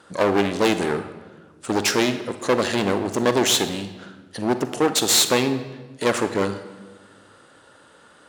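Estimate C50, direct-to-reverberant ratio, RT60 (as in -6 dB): 11.0 dB, 9.5 dB, 1.3 s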